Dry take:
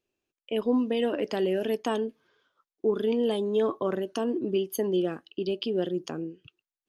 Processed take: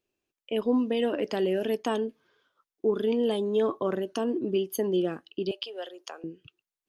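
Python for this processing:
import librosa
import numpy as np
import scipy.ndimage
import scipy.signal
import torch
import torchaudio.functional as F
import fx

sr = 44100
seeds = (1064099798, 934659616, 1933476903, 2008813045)

y = fx.highpass(x, sr, hz=590.0, slope=24, at=(5.51, 6.24))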